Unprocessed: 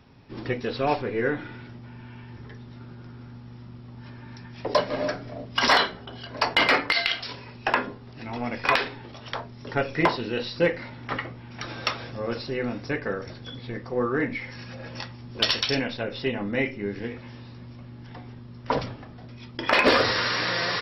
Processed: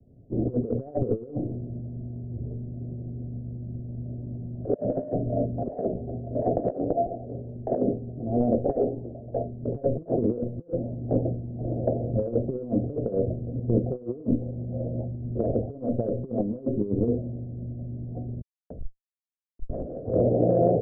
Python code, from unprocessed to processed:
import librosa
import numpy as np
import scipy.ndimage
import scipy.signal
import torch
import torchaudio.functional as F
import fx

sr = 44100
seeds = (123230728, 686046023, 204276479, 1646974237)

y = fx.peak_eq(x, sr, hz=150.0, db=-3.0, octaves=1.8, at=(8.21, 9.6))
y = fx.schmitt(y, sr, flips_db=-22.0, at=(18.41, 20.04))
y = scipy.signal.sosfilt(scipy.signal.butter(16, 700.0, 'lowpass', fs=sr, output='sos'), y)
y = fx.over_compress(y, sr, threshold_db=-33.0, ratio=-0.5)
y = fx.band_widen(y, sr, depth_pct=70)
y = y * 10.0 ** (8.0 / 20.0)